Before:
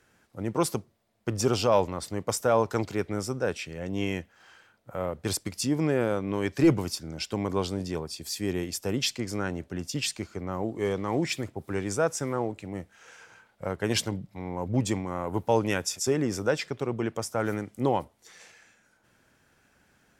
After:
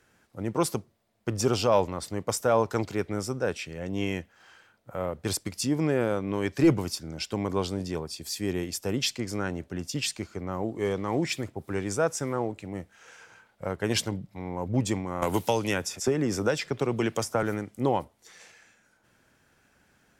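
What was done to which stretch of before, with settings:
15.22–17.43 three-band squash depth 100%

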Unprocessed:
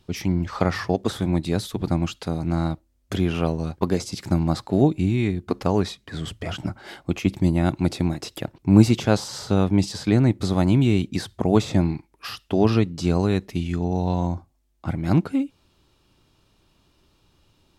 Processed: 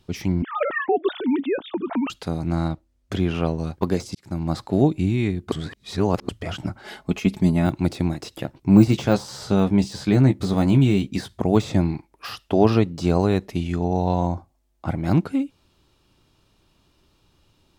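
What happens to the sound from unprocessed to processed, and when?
0.42–2.1 sine-wave speech
2.68–3.58 high shelf 10000 Hz -11.5 dB
4.15–4.6 fade in
5.52–6.29 reverse
6.84–7.67 comb 4.7 ms, depth 63%
8.31–11.39 doubler 15 ms -6.5 dB
11.93–15.1 bell 680 Hz +5.5 dB 1.5 oct
whole clip: de-esser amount 80%

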